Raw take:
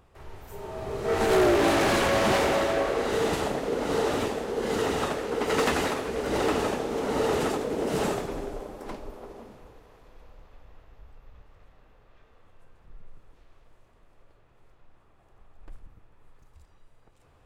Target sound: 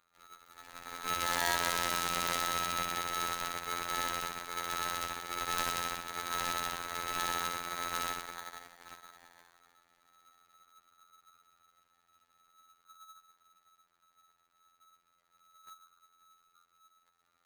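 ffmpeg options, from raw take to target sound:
ffmpeg -i in.wav -af "aeval=exprs='0.15*(cos(1*acos(clip(val(0)/0.15,-1,1)))-cos(1*PI/2))+0.0422*(cos(3*acos(clip(val(0)/0.15,-1,1)))-cos(3*PI/2))+0.0133*(cos(5*acos(clip(val(0)/0.15,-1,1)))-cos(5*PI/2))+0.075*(cos(6*acos(clip(val(0)/0.15,-1,1)))-cos(6*PI/2))+0.0299*(cos(8*acos(clip(val(0)/0.15,-1,1)))-cos(8*PI/2))':channel_layout=same,afftfilt=real='hypot(re,im)*cos(PI*b)':imag='0':win_size=2048:overlap=0.75,aeval=exprs='val(0)*sgn(sin(2*PI*1300*n/s))':channel_layout=same,volume=-9dB" out.wav

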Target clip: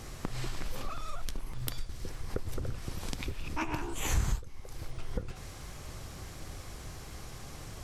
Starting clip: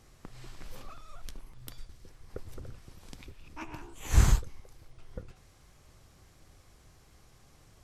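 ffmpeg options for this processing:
ffmpeg -i in.wav -af "acompressor=threshold=-45dB:ratio=4,volume=14.5dB" out.wav

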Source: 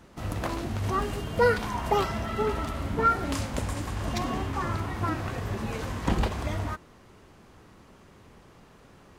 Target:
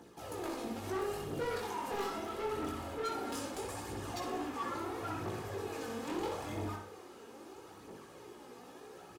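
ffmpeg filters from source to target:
ffmpeg -i in.wav -filter_complex "[0:a]highpass=280,equalizer=frequency=2000:width=0.33:gain=-8,bandreject=frequency=2000:width=19,aecho=1:1:2.4:0.39,areverse,acompressor=mode=upward:threshold=-43dB:ratio=2.5,areverse,aphaser=in_gain=1:out_gain=1:delay=4.5:decay=0.62:speed=0.76:type=triangular,asoftclip=type=tanh:threshold=-31dB,flanger=delay=16.5:depth=6.6:speed=0.23,asplit=2[link_01][link_02];[link_02]adelay=61,lowpass=frequency=3200:poles=1,volume=-3.5dB,asplit=2[link_03][link_04];[link_04]adelay=61,lowpass=frequency=3200:poles=1,volume=0.45,asplit=2[link_05][link_06];[link_06]adelay=61,lowpass=frequency=3200:poles=1,volume=0.45,asplit=2[link_07][link_08];[link_08]adelay=61,lowpass=frequency=3200:poles=1,volume=0.45,asplit=2[link_09][link_10];[link_10]adelay=61,lowpass=frequency=3200:poles=1,volume=0.45,asplit=2[link_11][link_12];[link_12]adelay=61,lowpass=frequency=3200:poles=1,volume=0.45[link_13];[link_03][link_05][link_07][link_09][link_11][link_13]amix=inputs=6:normalize=0[link_14];[link_01][link_14]amix=inputs=2:normalize=0" out.wav

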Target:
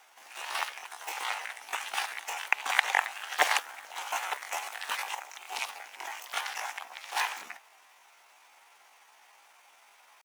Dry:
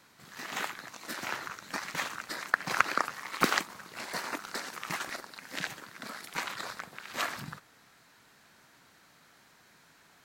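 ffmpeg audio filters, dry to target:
ffmpeg -i in.wav -af "highpass=frequency=550:width_type=q:width=4.3,asetrate=64194,aresample=44100,atempo=0.686977" out.wav

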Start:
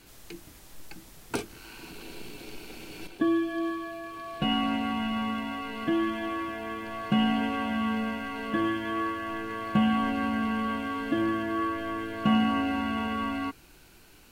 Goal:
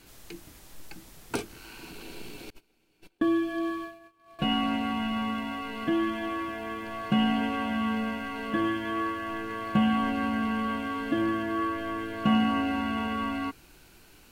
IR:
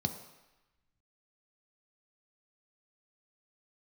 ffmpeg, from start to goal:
-filter_complex "[0:a]asettb=1/sr,asplit=3[link_01][link_02][link_03];[link_01]atrim=end=2.504[link_04];[link_02]atrim=start=2.5:end=4.39,asetpts=PTS-STARTPTS,afade=type=in:duration=0.004:curve=qsin,afade=type=out:start_time=1.886:duration=0.004:curve=qsin,agate=range=-27dB:threshold=-36dB:ratio=16:detection=peak[link_05];[link_03]atrim=start=4.386[link_06];[link_04][link_05]acrossfade=duration=0.004:curve1=hsin:curve2=qsin[link_07];[link_07][link_06]acrossfade=duration=0.004:curve1=qsin:curve2=hsin"

